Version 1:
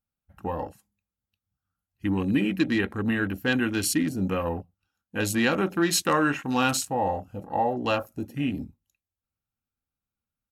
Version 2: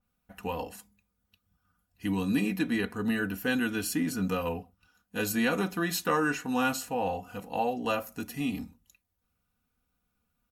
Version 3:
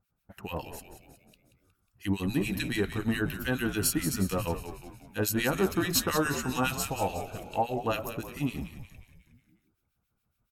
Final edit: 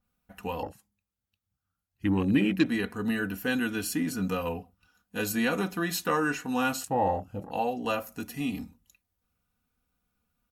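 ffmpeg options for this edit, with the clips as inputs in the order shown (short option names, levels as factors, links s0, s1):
-filter_complex "[0:a]asplit=2[s0][s1];[1:a]asplit=3[s2][s3][s4];[s2]atrim=end=0.632[s5];[s0]atrim=start=0.628:end=2.662[s6];[s3]atrim=start=2.658:end=6.842[s7];[s1]atrim=start=6.838:end=7.512[s8];[s4]atrim=start=7.508[s9];[s5][s6]acrossfade=d=0.004:c1=hsin:c2=hsin[s10];[s10][s7]acrossfade=d=0.004:c1=hsin:c2=hsin[s11];[s11][s8]acrossfade=d=0.004:c1=hsin:c2=hsin[s12];[s12][s9]acrossfade=d=0.004:c1=hsin:c2=hsin"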